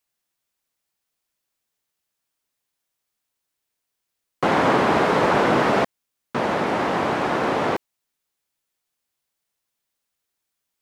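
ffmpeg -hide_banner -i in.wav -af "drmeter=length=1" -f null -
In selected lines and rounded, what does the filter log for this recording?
Channel 1: DR: 9.5
Overall DR: 9.5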